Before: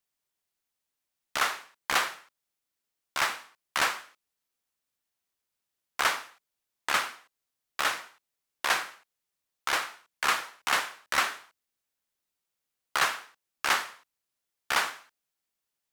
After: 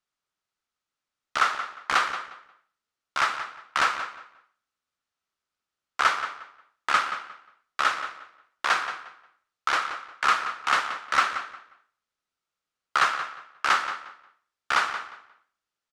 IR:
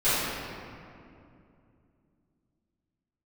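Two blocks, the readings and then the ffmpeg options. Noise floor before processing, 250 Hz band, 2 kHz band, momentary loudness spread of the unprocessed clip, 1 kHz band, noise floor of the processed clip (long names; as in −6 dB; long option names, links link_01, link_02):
below −85 dBFS, +0.5 dB, +3.0 dB, 13 LU, +6.0 dB, below −85 dBFS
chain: -filter_complex "[0:a]lowpass=6300,equalizer=frequency=1300:width=3.6:gain=9,asplit=2[link_01][link_02];[link_02]adelay=178,lowpass=frequency=4100:poles=1,volume=-10dB,asplit=2[link_03][link_04];[link_04]adelay=178,lowpass=frequency=4100:poles=1,volume=0.24,asplit=2[link_05][link_06];[link_06]adelay=178,lowpass=frequency=4100:poles=1,volume=0.24[link_07];[link_01][link_03][link_05][link_07]amix=inputs=4:normalize=0"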